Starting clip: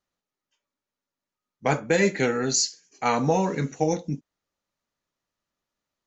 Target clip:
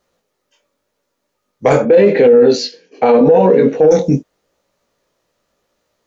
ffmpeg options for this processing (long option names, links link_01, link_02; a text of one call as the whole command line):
ffmpeg -i in.wav -filter_complex "[0:a]equalizer=frequency=500:width_type=o:width=0.89:gain=10,acontrast=51,flanger=delay=16.5:depth=6.2:speed=0.85,asettb=1/sr,asplit=3[link_01][link_02][link_03];[link_01]atrim=end=1.854[link_04];[link_02]atrim=start=1.85:end=3.91,asetpts=PTS-STARTPTS,afade=type=in:duration=0.004:curve=qsin,afade=type=out:start_time=2.056:duration=0.004:curve=qsin,highpass=150,equalizer=frequency=240:width_type=q:width=4:gain=7,equalizer=frequency=480:width_type=q:width=4:gain=8,equalizer=frequency=1300:width_type=q:width=4:gain=-6,equalizer=frequency=2000:width_type=q:width=4:gain=-5,lowpass=frequency=3500:width=0.5412,lowpass=frequency=3500:width=1.3066[link_05];[link_03]atrim=start=3.906[link_06];[link_04][link_05]acrossfade=duration=0.004:curve1=hsin:curve2=qsin[link_07];[link_07][link_06]acrossfade=duration=0.004:curve1=qsin:curve2=hsin,alimiter=level_in=13.5dB:limit=-1dB:release=50:level=0:latency=1,volume=-1dB" out.wav